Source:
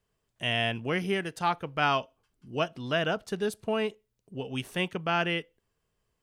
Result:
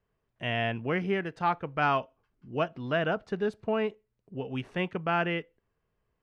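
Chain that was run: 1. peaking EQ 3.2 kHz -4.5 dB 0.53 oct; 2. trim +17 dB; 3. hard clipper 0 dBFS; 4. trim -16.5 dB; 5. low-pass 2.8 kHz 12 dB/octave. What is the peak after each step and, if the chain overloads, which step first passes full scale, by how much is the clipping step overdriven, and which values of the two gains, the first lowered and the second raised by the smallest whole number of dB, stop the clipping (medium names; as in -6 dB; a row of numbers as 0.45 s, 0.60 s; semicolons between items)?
-13.5 dBFS, +3.5 dBFS, 0.0 dBFS, -16.5 dBFS, -16.0 dBFS; step 2, 3.5 dB; step 2 +13 dB, step 4 -12.5 dB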